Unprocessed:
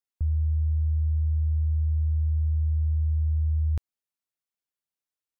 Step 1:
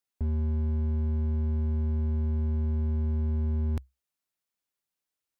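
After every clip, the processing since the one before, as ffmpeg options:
ffmpeg -i in.wav -af "equalizer=frequency=65:width=7.7:gain=-3.5,volume=29.5dB,asoftclip=hard,volume=-29.5dB,volume=3.5dB" out.wav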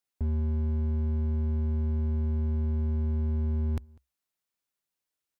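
ffmpeg -i in.wav -filter_complex "[0:a]asplit=2[link_01][link_02];[link_02]adelay=198.3,volume=-26dB,highshelf=frequency=4000:gain=-4.46[link_03];[link_01][link_03]amix=inputs=2:normalize=0" out.wav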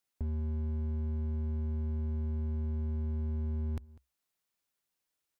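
ffmpeg -i in.wav -af "alimiter=level_in=6dB:limit=-24dB:level=0:latency=1:release=467,volume=-6dB,acompressor=threshold=-35dB:ratio=6,volume=2dB" out.wav

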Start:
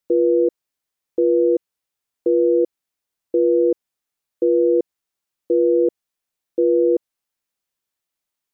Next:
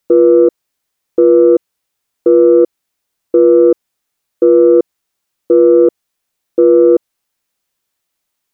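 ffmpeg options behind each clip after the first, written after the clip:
ffmpeg -i in.wav -af "acontrast=43,volume=4dB" out.wav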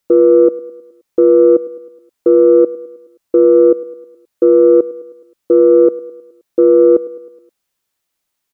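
ffmpeg -i in.wav -af "aecho=1:1:105|210|315|420|525:0.112|0.0617|0.0339|0.0187|0.0103,volume=-1dB" out.wav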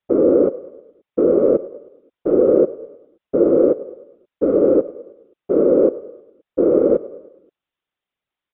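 ffmpeg -i in.wav -af "afftfilt=real='hypot(re,im)*cos(2*PI*random(0))':imag='hypot(re,im)*sin(2*PI*random(1))':win_size=512:overlap=0.75,aresample=8000,aresample=44100" out.wav

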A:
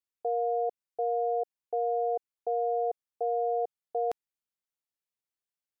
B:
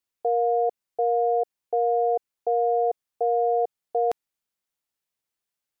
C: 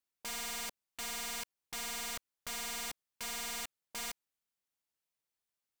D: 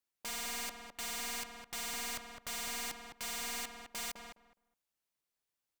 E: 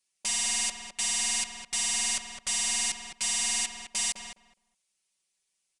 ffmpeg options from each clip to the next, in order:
ffmpeg -i in.wav -af "acontrast=65" out.wav
ffmpeg -i in.wav -af "aeval=exprs='(mod(31.6*val(0)+1,2)-1)/31.6':channel_layout=same,volume=-5dB" out.wav
ffmpeg -i in.wav -filter_complex "[0:a]asplit=2[link_01][link_02];[link_02]adelay=208,lowpass=frequency=1600:poles=1,volume=-4dB,asplit=2[link_03][link_04];[link_04]adelay=208,lowpass=frequency=1600:poles=1,volume=0.19,asplit=2[link_05][link_06];[link_06]adelay=208,lowpass=frequency=1600:poles=1,volume=0.19[link_07];[link_01][link_03][link_05][link_07]amix=inputs=4:normalize=0" out.wav
ffmpeg -i in.wav -af "aexciter=amount=2.3:drive=6.7:freq=2100,aresample=22050,aresample=44100,aecho=1:1:5.3:0.88" out.wav

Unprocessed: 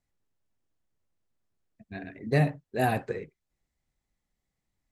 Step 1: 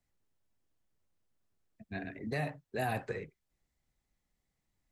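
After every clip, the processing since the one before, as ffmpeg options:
ffmpeg -i in.wav -filter_complex "[0:a]acrossover=split=190|560[link_01][link_02][link_03];[link_01]acompressor=threshold=-38dB:ratio=4[link_04];[link_02]acompressor=threshold=-43dB:ratio=4[link_05];[link_03]acompressor=threshold=-31dB:ratio=4[link_06];[link_04][link_05][link_06]amix=inputs=3:normalize=0,alimiter=level_in=1dB:limit=-24dB:level=0:latency=1:release=17,volume=-1dB" out.wav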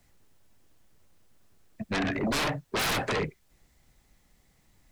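ffmpeg -i in.wav -af "aeval=exprs='0.0596*sin(PI/2*5.01*val(0)/0.0596)':channel_layout=same" out.wav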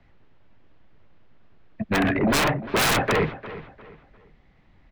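ffmpeg -i in.wav -filter_complex "[0:a]asplit=2[link_01][link_02];[link_02]adelay=351,lowpass=frequency=4200:poles=1,volume=-15dB,asplit=2[link_03][link_04];[link_04]adelay=351,lowpass=frequency=4200:poles=1,volume=0.33,asplit=2[link_05][link_06];[link_06]adelay=351,lowpass=frequency=4200:poles=1,volume=0.33[link_07];[link_01][link_03][link_05][link_07]amix=inputs=4:normalize=0,acrossover=split=680|3400[link_08][link_09][link_10];[link_10]acrusher=bits=4:mix=0:aa=0.5[link_11];[link_08][link_09][link_11]amix=inputs=3:normalize=0,volume=7.5dB" out.wav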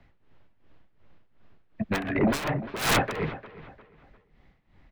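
ffmpeg -i in.wav -af "tremolo=f=2.7:d=0.8" out.wav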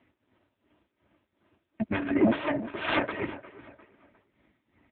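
ffmpeg -i in.wav -af "aeval=exprs='0.355*(cos(1*acos(clip(val(0)/0.355,-1,1)))-cos(1*PI/2))+0.01*(cos(6*acos(clip(val(0)/0.355,-1,1)))-cos(6*PI/2))':channel_layout=same,aecho=1:1:3.2:0.8" -ar 8000 -c:a libopencore_amrnb -b:a 5900 out.amr

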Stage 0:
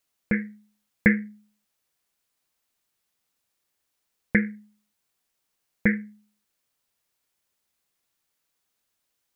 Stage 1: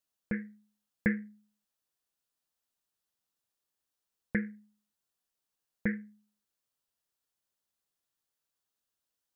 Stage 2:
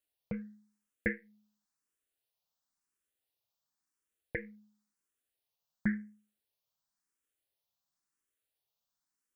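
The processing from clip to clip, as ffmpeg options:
ffmpeg -i in.wav -af "equalizer=frequency=2200:width_type=o:width=0.33:gain=-7,volume=-9dB" out.wav
ffmpeg -i in.wav -filter_complex "[0:a]asplit=2[link_01][link_02];[link_02]afreqshift=0.95[link_03];[link_01][link_03]amix=inputs=2:normalize=1,volume=1dB" out.wav

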